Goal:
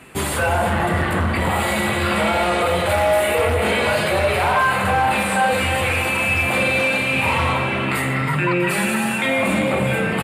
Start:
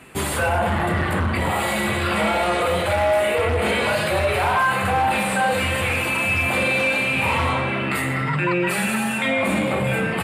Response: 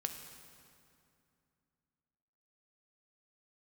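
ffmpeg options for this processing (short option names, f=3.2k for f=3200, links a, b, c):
-filter_complex "[0:a]asettb=1/sr,asplit=3[a][b][c];[a]atrim=end=2.894[d];[b]atrim=start=2.89:end=3.55,asetpts=PTS-STARTPTS,afade=t=in:d=0.004:c=qsin,afade=t=out:st=0.656:d=0.004:c=qsin,highshelf=f=9.2k:g=10.5[e];[c]atrim=start=3.546[f];[d][e]acrossfade=d=0.004:c1=hsin:c2=qsin[g];[g][f]acrossfade=d=0.004:c1=qsin:c2=hsin,aecho=1:1:324|648|972|1296|1620:0.282|0.124|0.0546|0.024|0.0106,volume=1.5dB"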